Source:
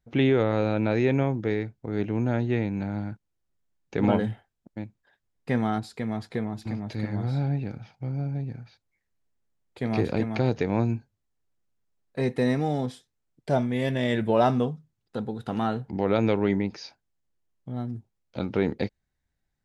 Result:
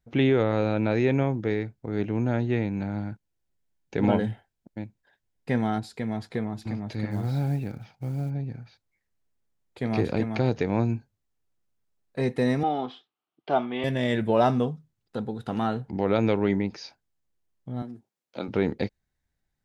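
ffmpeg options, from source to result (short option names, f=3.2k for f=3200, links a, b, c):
-filter_complex "[0:a]asettb=1/sr,asplit=3[a][b][c];[a]atrim=end=3.094[d];[b]atrim=start=3.09:end=6.22,asetpts=PTS-STARTPTS,afade=t=in:d=0.004:c=qsin,afade=t=out:st=3.126:d=0.004:c=qsin,bandreject=f=1.2k:w=7.8[e];[c]atrim=start=6.216[f];[d][e]acrossfade=d=0.004:c1=hsin:c2=qsin[g];[g][f]acrossfade=d=0.004:c1=qsin:c2=hsin,asplit=3[h][i][j];[h]afade=t=out:st=7.1:d=0.02[k];[i]acrusher=bits=8:mode=log:mix=0:aa=0.000001,afade=t=in:st=7.1:d=0.02,afade=t=out:st=8.29:d=0.02[l];[j]afade=t=in:st=8.29:d=0.02[m];[k][l][m]amix=inputs=3:normalize=0,asettb=1/sr,asplit=3[n][o][p];[n]atrim=end=12.634[q];[o]atrim=start=12.63:end=13.84,asetpts=PTS-STARTPTS,afade=t=in:d=0.004:c=qsin,afade=t=out:st=1.206:d=0.004:c=qsin,highpass=310,equalizer=f=340:t=q:w=4:g=5,equalizer=f=530:t=q:w=4:g=-7,equalizer=f=760:t=q:w=4:g=7,equalizer=f=1.2k:t=q:w=4:g=10,equalizer=f=1.8k:t=q:w=4:g=-5,equalizer=f=3k:t=q:w=4:g=8,lowpass=f=3.9k:w=0.5412,lowpass=f=3.9k:w=1.3066[r];[p]atrim=start=13.836[s];[q][r]acrossfade=d=0.004:c1=hsin:c2=qsin[t];[t][s]acrossfade=d=0.004:c1=qsin:c2=hsin,asettb=1/sr,asplit=3[u][v][w];[u]atrim=end=17.824[x];[v]atrim=start=17.82:end=18.48,asetpts=PTS-STARTPTS,afade=t=in:d=0.004:c=qsin,afade=t=out:st=0.656:d=0.004:c=qsin,highpass=270[y];[w]atrim=start=18.476[z];[x][y]acrossfade=d=0.004:c1=hsin:c2=qsin[aa];[aa][z]acrossfade=d=0.004:c1=qsin:c2=hsin"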